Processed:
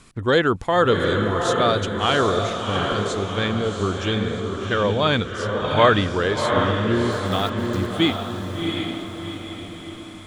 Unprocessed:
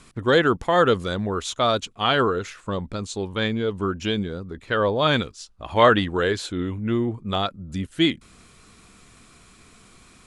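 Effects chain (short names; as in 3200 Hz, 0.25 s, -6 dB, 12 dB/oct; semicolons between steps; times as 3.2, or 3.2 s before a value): bell 97 Hz +5.5 dB 0.35 oct; 7.12–7.89 sample gate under -33 dBFS; diffused feedback echo 0.73 s, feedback 49%, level -3.5 dB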